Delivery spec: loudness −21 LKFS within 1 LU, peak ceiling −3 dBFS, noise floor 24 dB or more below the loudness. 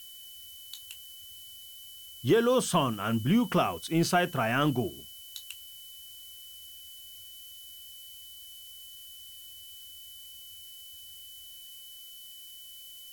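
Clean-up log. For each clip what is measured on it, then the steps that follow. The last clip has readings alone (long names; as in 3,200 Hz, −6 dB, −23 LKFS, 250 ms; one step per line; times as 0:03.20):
interfering tone 3,000 Hz; level of the tone −48 dBFS; background noise floor −48 dBFS; target noise floor −53 dBFS; integrated loudness −28.5 LKFS; sample peak −13.0 dBFS; target loudness −21.0 LKFS
→ notch filter 3,000 Hz, Q 30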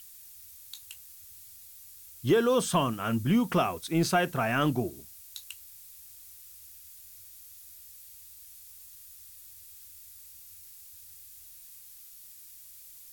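interfering tone none found; background noise floor −50 dBFS; target noise floor −52 dBFS
→ noise reduction from a noise print 6 dB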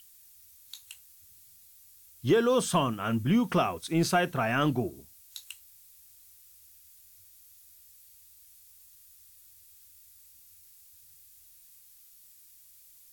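background noise floor −56 dBFS; integrated loudness −27.0 LKFS; sample peak −13.0 dBFS; target loudness −21.0 LKFS
→ level +6 dB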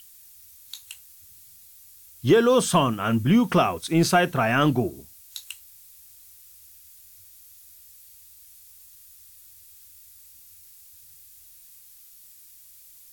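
integrated loudness −21.0 LKFS; sample peak −7.0 dBFS; background noise floor −50 dBFS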